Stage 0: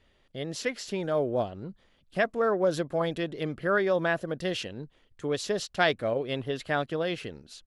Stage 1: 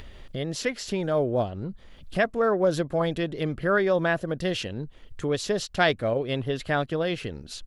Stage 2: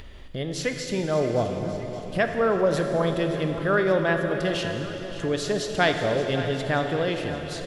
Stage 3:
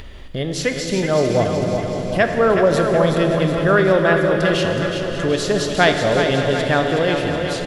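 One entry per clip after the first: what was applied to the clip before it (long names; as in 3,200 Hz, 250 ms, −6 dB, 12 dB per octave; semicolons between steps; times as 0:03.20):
low-shelf EQ 98 Hz +11.5 dB; in parallel at +3 dB: upward compression, threshold −27 dBFS; on the sum: level −5.5 dB
repeating echo 572 ms, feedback 54%, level −14 dB; convolution reverb RT60 3.6 s, pre-delay 24 ms, DRR 4.5 dB
repeating echo 372 ms, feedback 54%, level −7 dB; level +6.5 dB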